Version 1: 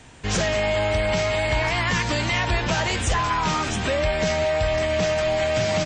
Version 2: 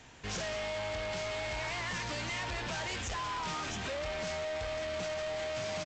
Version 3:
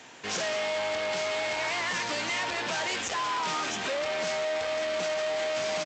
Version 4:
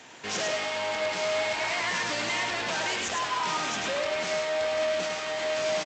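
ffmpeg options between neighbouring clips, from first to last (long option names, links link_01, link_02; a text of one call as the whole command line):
ffmpeg -i in.wav -af "lowshelf=frequency=420:gain=-5,aresample=16000,asoftclip=type=tanh:threshold=-29dB,aresample=44100,volume=-5.5dB" out.wav
ffmpeg -i in.wav -af "highpass=260,volume=7dB" out.wav
ffmpeg -i in.wav -af "aecho=1:1:104:0.631" out.wav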